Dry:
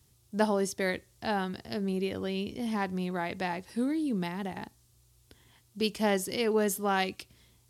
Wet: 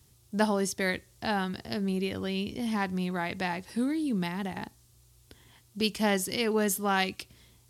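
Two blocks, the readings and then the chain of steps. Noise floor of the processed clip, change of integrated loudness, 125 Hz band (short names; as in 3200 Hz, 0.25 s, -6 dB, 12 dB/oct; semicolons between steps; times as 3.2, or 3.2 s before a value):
-61 dBFS, +1.0 dB, +2.0 dB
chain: dynamic EQ 490 Hz, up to -5 dB, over -40 dBFS, Q 0.76; gain +3.5 dB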